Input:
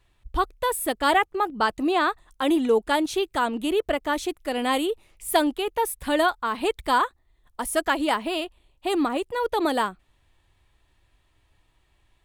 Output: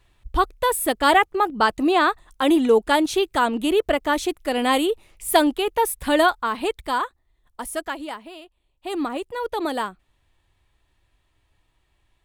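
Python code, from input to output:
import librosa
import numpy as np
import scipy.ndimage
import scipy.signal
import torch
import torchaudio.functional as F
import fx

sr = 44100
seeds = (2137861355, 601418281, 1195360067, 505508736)

y = fx.gain(x, sr, db=fx.line((6.33, 4.0), (6.91, -2.5), (7.66, -2.5), (8.4, -14.0), (9.02, -2.0)))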